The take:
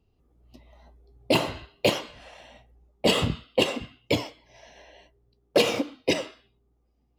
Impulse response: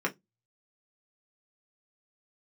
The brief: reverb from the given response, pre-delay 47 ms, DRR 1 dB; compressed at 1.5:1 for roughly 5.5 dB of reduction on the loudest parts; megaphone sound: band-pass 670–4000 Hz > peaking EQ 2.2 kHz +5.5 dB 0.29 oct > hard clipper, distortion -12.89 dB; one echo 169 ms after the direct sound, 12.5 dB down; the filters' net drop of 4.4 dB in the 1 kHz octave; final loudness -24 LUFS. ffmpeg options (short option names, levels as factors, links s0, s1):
-filter_complex "[0:a]equalizer=f=1000:t=o:g=-4,acompressor=threshold=0.0251:ratio=1.5,aecho=1:1:169:0.237,asplit=2[s0][s1];[1:a]atrim=start_sample=2205,adelay=47[s2];[s1][s2]afir=irnorm=-1:irlink=0,volume=0.335[s3];[s0][s3]amix=inputs=2:normalize=0,highpass=670,lowpass=4000,equalizer=f=2200:t=o:w=0.29:g=5.5,asoftclip=type=hard:threshold=0.0501,volume=3.16"